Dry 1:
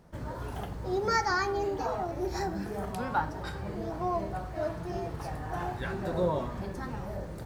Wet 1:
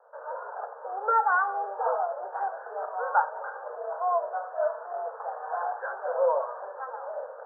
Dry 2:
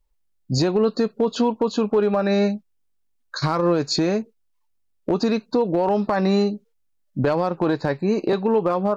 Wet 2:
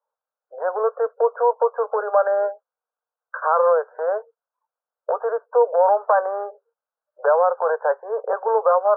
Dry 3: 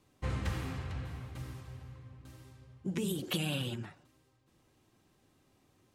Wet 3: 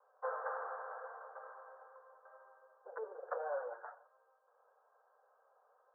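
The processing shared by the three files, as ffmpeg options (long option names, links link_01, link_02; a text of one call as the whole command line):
ffmpeg -i in.wav -af "asuperpass=centerf=860:order=20:qfactor=0.76,volume=6dB" out.wav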